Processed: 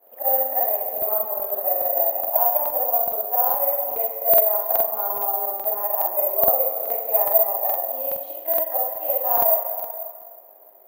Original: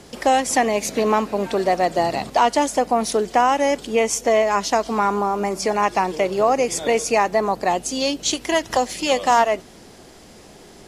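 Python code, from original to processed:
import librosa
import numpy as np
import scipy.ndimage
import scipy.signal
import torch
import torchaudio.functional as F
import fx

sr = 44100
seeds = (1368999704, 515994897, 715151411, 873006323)

y = fx.frame_reverse(x, sr, frame_ms=137.0)
y = fx.ladder_bandpass(y, sr, hz=690.0, resonance_pct=70)
y = y + 10.0 ** (-18.0 / 20.0) * np.pad(y, (int(487 * sr / 1000.0), 0))[:len(y)]
y = fx.rev_plate(y, sr, seeds[0], rt60_s=2.0, hf_ratio=0.8, predelay_ms=0, drr_db=2.5)
y = (np.kron(y[::3], np.eye(3)[0]) * 3)[:len(y)]
y = fx.buffer_crackle(y, sr, first_s=0.93, period_s=0.42, block=2048, kind='repeat')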